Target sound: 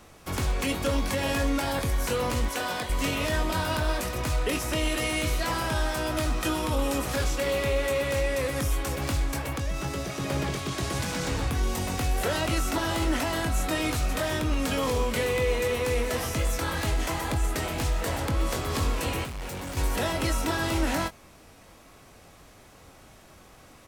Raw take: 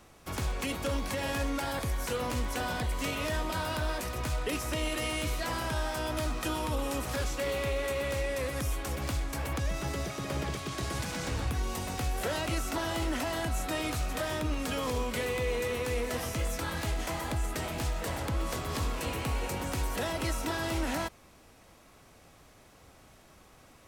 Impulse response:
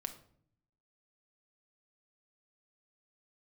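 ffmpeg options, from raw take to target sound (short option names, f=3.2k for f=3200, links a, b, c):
-filter_complex "[0:a]asettb=1/sr,asplit=3[a][b][c];[a]atrim=end=2.484[d];[b]atrim=start=2.48:end=2.9,asetpts=PTS-STARTPTS,afade=t=in:d=0.004:c=qsin,afade=t=out:st=0.416:d=0.004:c=qsin,highpass=f=420:p=1[e];[c]atrim=start=2.896[f];[d][e]acrossfade=d=0.004:c1=hsin:c2=qsin[g];[g][f]acrossfade=d=0.004:c1=qsin:c2=hsin,asettb=1/sr,asplit=3[h][i][j];[h]atrim=end=9.384[k];[i]atrim=start=9.38:end=10.2,asetpts=PTS-STARTPTS,afade=t=in:d=0.004:c=qsin,afade=t=out:st=0.816:d=0.004:c=qsin,acompressor=threshold=-33dB:ratio=2.5[l];[j]atrim=start=10.196[m];[k][l]acrossfade=d=0.004:c1=hsin:c2=qsin[n];[n][m]acrossfade=d=0.004:c1=qsin:c2=hsin,asettb=1/sr,asplit=3[o][p][q];[o]atrim=end=19.244[r];[p]atrim=start=19.24:end=19.77,asetpts=PTS-STARTPTS,afade=t=in:d=0.004:c=qsin,afade=t=out:st=0.526:d=0.004:c=qsin,asoftclip=type=hard:threshold=-39.5dB[s];[q]atrim=start=19.766[t];[r][s]acrossfade=d=0.004:c1=hsin:c2=qsin[u];[u][t]acrossfade=d=0.004:c1=qsin:c2=hsin,asplit=2[v][w];[w]adelay=22,volume=-9dB[x];[v][x]amix=inputs=2:normalize=0,volume=4.5dB"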